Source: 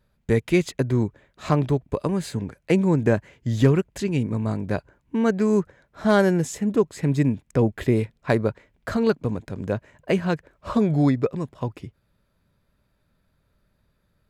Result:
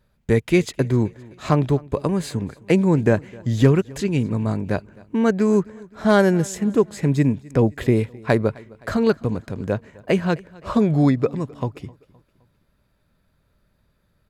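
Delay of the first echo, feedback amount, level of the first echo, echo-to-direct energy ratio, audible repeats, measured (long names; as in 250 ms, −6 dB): 259 ms, 48%, −23.5 dB, −22.5 dB, 2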